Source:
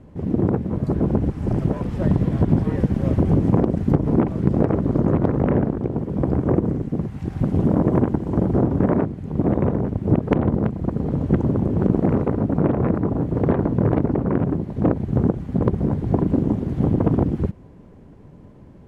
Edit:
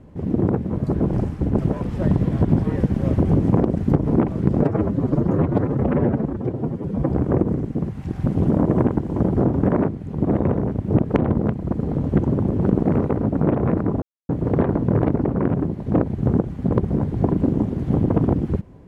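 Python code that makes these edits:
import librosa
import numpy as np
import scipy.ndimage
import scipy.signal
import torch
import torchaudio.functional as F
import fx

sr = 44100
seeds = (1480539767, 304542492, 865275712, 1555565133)

y = fx.edit(x, sr, fx.reverse_span(start_s=1.13, length_s=0.45),
    fx.stretch_span(start_s=4.61, length_s=1.66, factor=1.5),
    fx.insert_silence(at_s=13.19, length_s=0.27), tone=tone)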